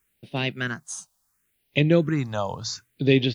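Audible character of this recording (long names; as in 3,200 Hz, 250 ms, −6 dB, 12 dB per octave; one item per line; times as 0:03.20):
a quantiser's noise floor 12 bits, dither triangular
phaser sweep stages 4, 0.71 Hz, lowest notch 340–1,300 Hz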